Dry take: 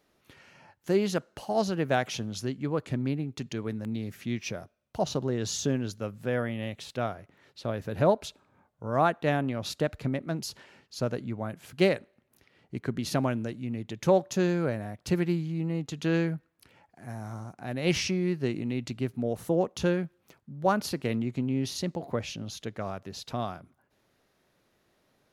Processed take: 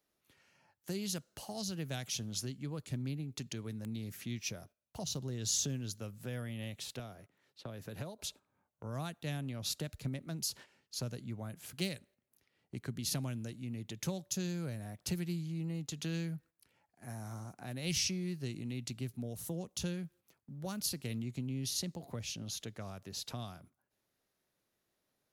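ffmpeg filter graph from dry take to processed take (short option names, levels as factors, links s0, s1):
-filter_complex "[0:a]asettb=1/sr,asplit=3[s0][s1][s2];[s0]atrim=end=6.994[s3];[s1]atrim=start=6.99:end=8.19,asetpts=PTS-STARTPTS,afade=t=in:d=0.004:c=qsin,afade=t=out:st=1.196:d=0.004:c=qsin,highpass=96,acrossover=split=620|3700[s4][s5][s6];[s4]acompressor=threshold=0.02:ratio=4[s7];[s5]acompressor=threshold=0.01:ratio=4[s8];[s6]acompressor=threshold=0.00112:ratio=4[s9];[s7][s8][s9]amix=inputs=3:normalize=0[s10];[s2]atrim=start=8.186[s11];[s3][s10]acrossfade=d=0.004:c1=hsin:c2=qsin[s12];[s12][s11]acrossfade=d=0.004:c1=qsin:c2=hsin,agate=range=0.316:threshold=0.00316:ratio=16:detection=peak,highshelf=f=5500:g=11.5,acrossover=split=190|3000[s13][s14][s15];[s14]acompressor=threshold=0.00891:ratio=4[s16];[s13][s16][s15]amix=inputs=3:normalize=0,volume=0.562"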